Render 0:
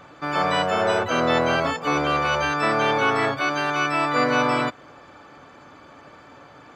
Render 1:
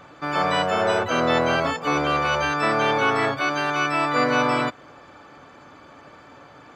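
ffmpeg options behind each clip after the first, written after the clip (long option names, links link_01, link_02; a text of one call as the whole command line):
ffmpeg -i in.wav -af anull out.wav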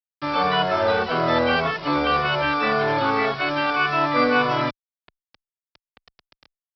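ffmpeg -i in.wav -filter_complex "[0:a]aresample=11025,acrusher=bits=5:mix=0:aa=0.000001,aresample=44100,asplit=2[link_01][link_02];[link_02]adelay=2.3,afreqshift=-1.8[link_03];[link_01][link_03]amix=inputs=2:normalize=1,volume=3.5dB" out.wav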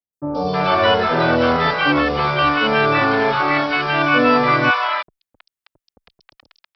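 ffmpeg -i in.wav -filter_complex "[0:a]acrossover=split=730|4600[link_01][link_02][link_03];[link_03]adelay=130[link_04];[link_02]adelay=320[link_05];[link_01][link_05][link_04]amix=inputs=3:normalize=0,volume=6dB" out.wav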